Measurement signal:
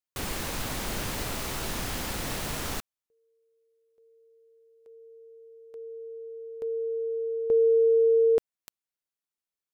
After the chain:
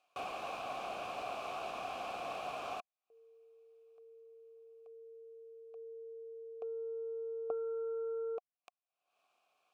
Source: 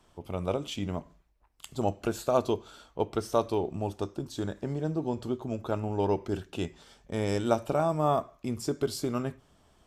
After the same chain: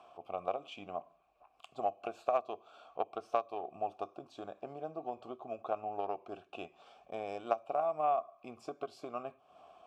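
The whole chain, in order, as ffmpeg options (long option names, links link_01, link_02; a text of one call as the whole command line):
ffmpeg -i in.wav -filter_complex "[0:a]acompressor=mode=upward:threshold=-39dB:ratio=2.5:attack=0.17:release=276:knee=2.83:detection=peak,aeval=exprs='0.355*(cos(1*acos(clip(val(0)/0.355,-1,1)))-cos(1*PI/2))+0.0112*(cos(2*acos(clip(val(0)/0.355,-1,1)))-cos(2*PI/2))+0.0794*(cos(3*acos(clip(val(0)/0.355,-1,1)))-cos(3*PI/2))':channel_layout=same,acompressor=threshold=-40dB:ratio=6:attack=74:release=292:knee=6:detection=rms,asplit=3[link_01][link_02][link_03];[link_01]bandpass=frequency=730:width_type=q:width=8,volume=0dB[link_04];[link_02]bandpass=frequency=1090:width_type=q:width=8,volume=-6dB[link_05];[link_03]bandpass=frequency=2440:width_type=q:width=8,volume=-9dB[link_06];[link_04][link_05][link_06]amix=inputs=3:normalize=0,volume=17dB" out.wav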